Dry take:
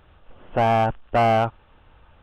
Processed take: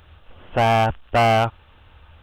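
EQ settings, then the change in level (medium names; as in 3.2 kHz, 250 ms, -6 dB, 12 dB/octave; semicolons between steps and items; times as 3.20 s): peaking EQ 79 Hz +10 dB 0.71 oct; treble shelf 2.1 kHz +11 dB; 0.0 dB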